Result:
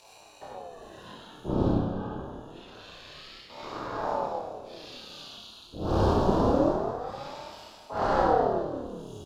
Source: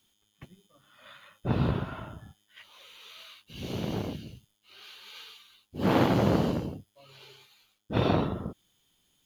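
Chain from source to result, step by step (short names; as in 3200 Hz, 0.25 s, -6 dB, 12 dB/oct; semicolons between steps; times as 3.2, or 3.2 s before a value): octaver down 1 oct, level +4 dB; 1.66–3.98 tone controls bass -14 dB, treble -8 dB; upward compressor, threshold -30 dBFS; chorus voices 4, 0.62 Hz, delay 22 ms, depth 3.6 ms; wavefolder -21.5 dBFS; Butterworth band-stop 2000 Hz, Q 0.83; air absorption 51 m; doubler 31 ms -3 dB; feedback echo 0.198 s, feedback 59%, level -11 dB; reverb RT60 0.70 s, pre-delay 46 ms, DRR -3 dB; ring modulator with a swept carrier 480 Hz, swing 60%, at 0.26 Hz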